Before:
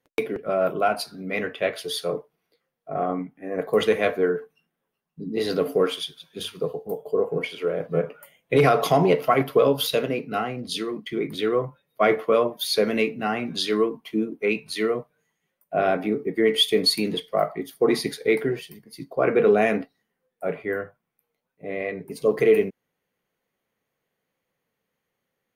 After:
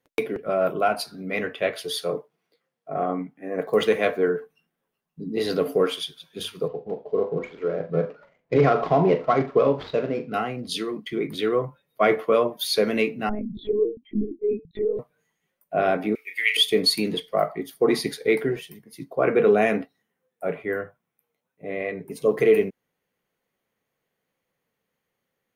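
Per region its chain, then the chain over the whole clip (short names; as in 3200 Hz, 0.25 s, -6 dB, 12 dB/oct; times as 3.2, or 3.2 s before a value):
2.04–4.28 median filter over 3 samples + HPF 110 Hz
6.68–10.34 median filter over 15 samples + air absorption 210 m + flutter echo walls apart 7.2 m, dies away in 0.23 s
13.29–14.99 spectral contrast raised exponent 3 + LPF 1300 Hz + monotone LPC vocoder at 8 kHz 210 Hz
16.15–16.57 resonant high-pass 2500 Hz, resonance Q 6.2 + high shelf 4100 Hz +11.5 dB + doubler 32 ms -8 dB
18.56–22.4 HPF 44 Hz + notch 4600 Hz, Q 7.3
whole clip: dry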